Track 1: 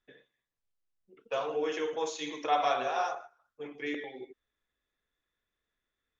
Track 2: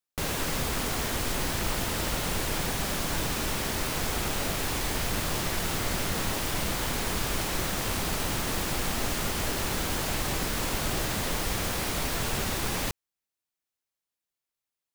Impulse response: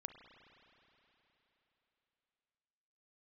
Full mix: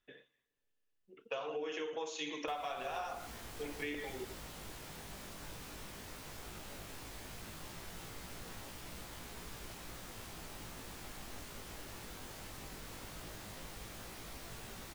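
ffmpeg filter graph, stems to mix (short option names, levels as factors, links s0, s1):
-filter_complex "[0:a]equalizer=f=2800:w=4:g=6.5,volume=0.891,asplit=2[s0][s1];[s1]volume=0.168[s2];[1:a]flanger=delay=17:depth=3:speed=0.15,adelay=2300,volume=0.158[s3];[2:a]atrim=start_sample=2205[s4];[s2][s4]afir=irnorm=-1:irlink=0[s5];[s0][s3][s5]amix=inputs=3:normalize=0,acompressor=threshold=0.0158:ratio=16"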